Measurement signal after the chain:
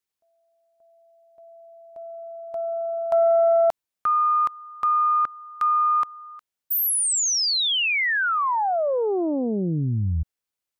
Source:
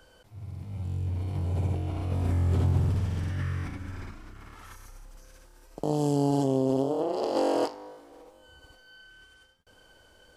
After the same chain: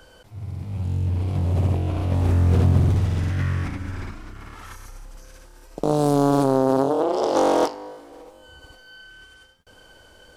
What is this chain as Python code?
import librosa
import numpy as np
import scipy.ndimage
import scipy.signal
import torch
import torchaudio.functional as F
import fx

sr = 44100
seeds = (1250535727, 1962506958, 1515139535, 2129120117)

y = fx.doppler_dist(x, sr, depth_ms=0.83)
y = y * 10.0 ** (7.5 / 20.0)